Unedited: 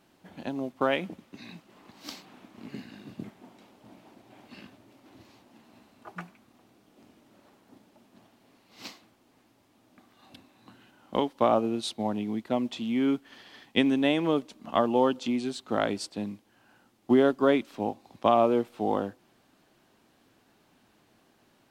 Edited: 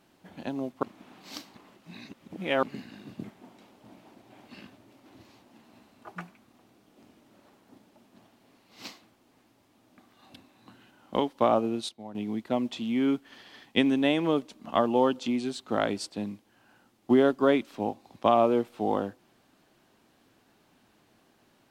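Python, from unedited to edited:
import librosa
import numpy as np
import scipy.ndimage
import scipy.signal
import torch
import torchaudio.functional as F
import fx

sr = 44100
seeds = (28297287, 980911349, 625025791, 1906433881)

y = fx.edit(x, sr, fx.reverse_span(start_s=0.83, length_s=1.8),
    fx.fade_down_up(start_s=11.4, length_s=1.24, db=-13.0, fade_s=0.49, curve='log'), tone=tone)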